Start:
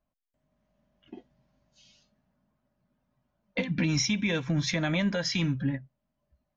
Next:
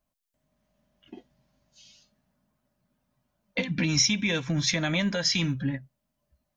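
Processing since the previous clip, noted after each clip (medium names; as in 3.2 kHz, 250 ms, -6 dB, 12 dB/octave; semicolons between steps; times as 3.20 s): treble shelf 3.3 kHz +9 dB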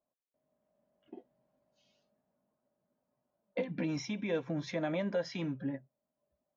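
band-pass filter 510 Hz, Q 1.3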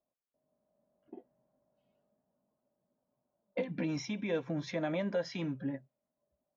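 level-controlled noise filter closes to 1.2 kHz, open at -33 dBFS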